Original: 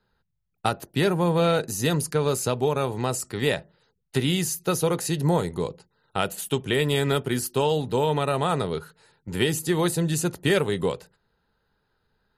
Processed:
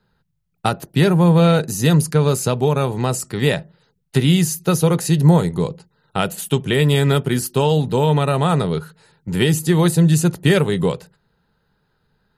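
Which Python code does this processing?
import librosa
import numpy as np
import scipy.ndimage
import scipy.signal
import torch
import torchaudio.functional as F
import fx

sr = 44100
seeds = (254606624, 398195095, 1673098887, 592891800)

y = fx.peak_eq(x, sr, hz=160.0, db=8.0, octaves=0.75)
y = y * librosa.db_to_amplitude(4.5)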